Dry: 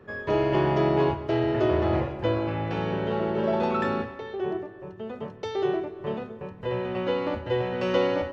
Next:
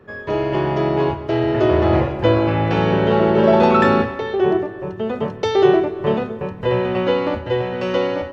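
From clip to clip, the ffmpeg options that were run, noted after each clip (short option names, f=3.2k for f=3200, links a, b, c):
-af "dynaudnorm=f=330:g=11:m=10.5dB,volume=3dB"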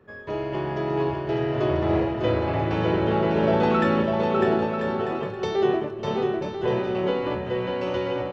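-af "aecho=1:1:600|990|1244|1408|1515:0.631|0.398|0.251|0.158|0.1,volume=-8.5dB"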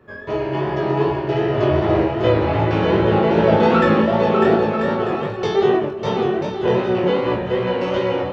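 -af "flanger=delay=16:depth=6.7:speed=2.6,volume=9dB"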